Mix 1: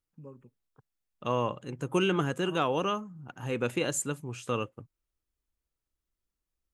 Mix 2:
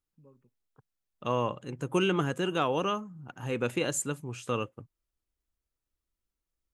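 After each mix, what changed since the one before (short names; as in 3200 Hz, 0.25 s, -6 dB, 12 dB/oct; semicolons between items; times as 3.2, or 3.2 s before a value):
first voice -10.5 dB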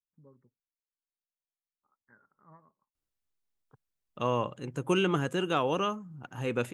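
first voice: add brick-wall FIR low-pass 2200 Hz; second voice: entry +2.95 s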